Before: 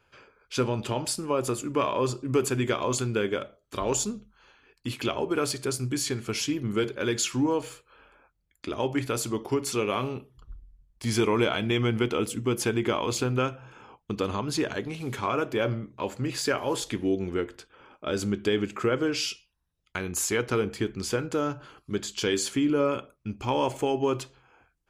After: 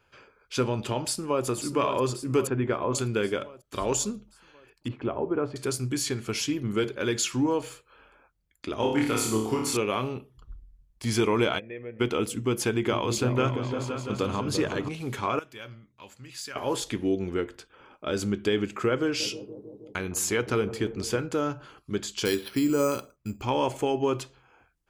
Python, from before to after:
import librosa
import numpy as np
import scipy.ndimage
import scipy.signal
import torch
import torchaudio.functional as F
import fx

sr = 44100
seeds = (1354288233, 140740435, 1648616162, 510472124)

y = fx.echo_throw(x, sr, start_s=1.03, length_s=0.42, ms=540, feedback_pct=60, wet_db=-8.0)
y = fx.lowpass(y, sr, hz=1700.0, slope=12, at=(2.47, 2.95))
y = fx.lowpass(y, sr, hz=1100.0, slope=12, at=(4.88, 5.56))
y = fx.room_flutter(y, sr, wall_m=4.7, rt60_s=0.62, at=(8.76, 9.77))
y = fx.formant_cascade(y, sr, vowel='e', at=(11.58, 11.99), fade=0.02)
y = fx.echo_opening(y, sr, ms=171, hz=200, octaves=2, feedback_pct=70, wet_db=-3, at=(12.73, 14.89))
y = fx.tone_stack(y, sr, knobs='5-5-5', at=(15.39, 16.56))
y = fx.echo_bbd(y, sr, ms=159, stages=1024, feedback_pct=74, wet_db=-14, at=(19.19, 21.21), fade=0.02)
y = fx.resample_bad(y, sr, factor=6, down='filtered', up='hold', at=(22.25, 23.42))